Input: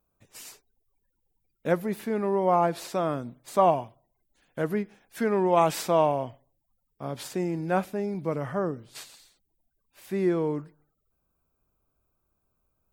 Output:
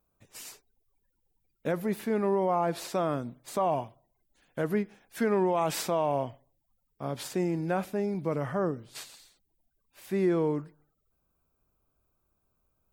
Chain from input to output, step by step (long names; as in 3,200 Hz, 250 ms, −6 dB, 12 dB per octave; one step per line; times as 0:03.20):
brickwall limiter −17.5 dBFS, peak gain reduction 9 dB